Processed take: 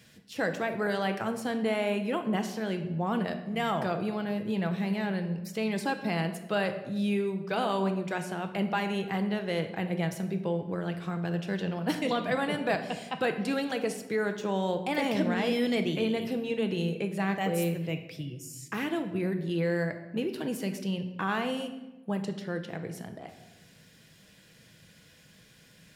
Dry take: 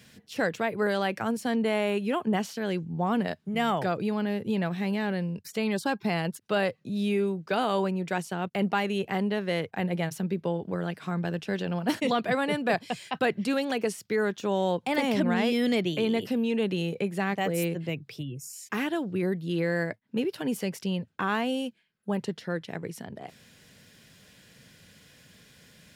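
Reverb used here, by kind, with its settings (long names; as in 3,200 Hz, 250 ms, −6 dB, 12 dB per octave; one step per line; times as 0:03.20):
rectangular room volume 520 cubic metres, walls mixed, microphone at 0.66 metres
level −3 dB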